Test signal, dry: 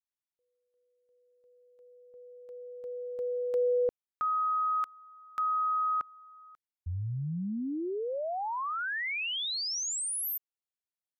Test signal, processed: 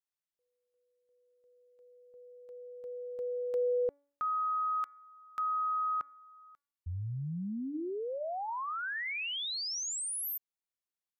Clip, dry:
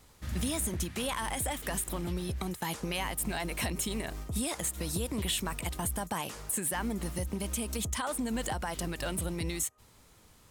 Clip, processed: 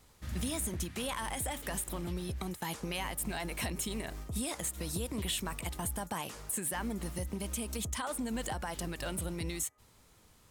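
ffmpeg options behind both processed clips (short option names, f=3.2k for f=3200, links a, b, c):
-af "bandreject=f=284.8:t=h:w=4,bandreject=f=569.6:t=h:w=4,bandreject=f=854.4:t=h:w=4,bandreject=f=1.1392k:t=h:w=4,bandreject=f=1.424k:t=h:w=4,bandreject=f=1.7088k:t=h:w=4,bandreject=f=1.9936k:t=h:w=4,bandreject=f=2.2784k:t=h:w=4,volume=-3dB"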